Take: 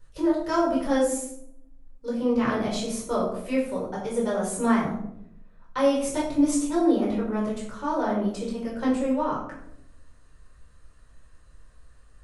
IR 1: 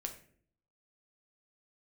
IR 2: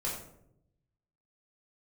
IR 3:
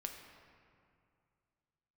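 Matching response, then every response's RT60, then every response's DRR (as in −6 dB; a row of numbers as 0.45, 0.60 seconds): 2; 0.55, 0.75, 2.4 seconds; 3.5, −6.0, 3.0 decibels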